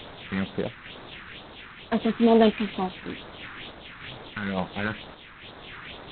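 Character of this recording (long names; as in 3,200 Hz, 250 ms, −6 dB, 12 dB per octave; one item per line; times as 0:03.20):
a quantiser's noise floor 6 bits, dither triangular
phaser sweep stages 4, 2.2 Hz, lowest notch 590–2,800 Hz
sample-and-hold tremolo
G.726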